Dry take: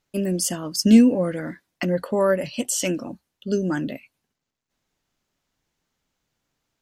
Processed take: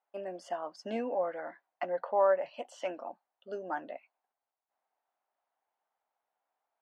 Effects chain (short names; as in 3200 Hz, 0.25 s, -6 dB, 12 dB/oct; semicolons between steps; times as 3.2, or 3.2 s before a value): ladder band-pass 850 Hz, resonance 60%; gain +6 dB